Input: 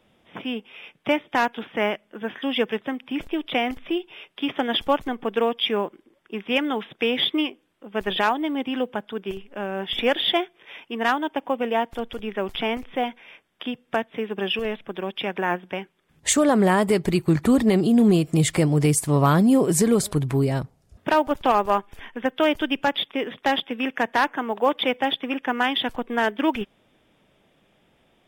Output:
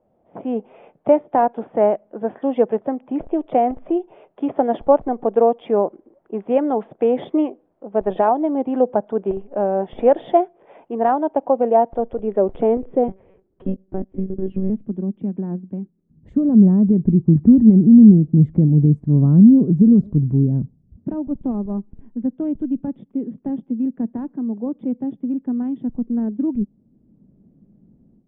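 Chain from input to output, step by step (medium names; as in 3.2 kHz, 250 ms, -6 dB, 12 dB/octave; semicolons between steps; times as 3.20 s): level rider gain up to 14.5 dB; low-pass sweep 670 Hz -> 220 Hz, 11.89–14.98 s; 13.08–14.70 s: monotone LPC vocoder at 8 kHz 190 Hz; trim -5.5 dB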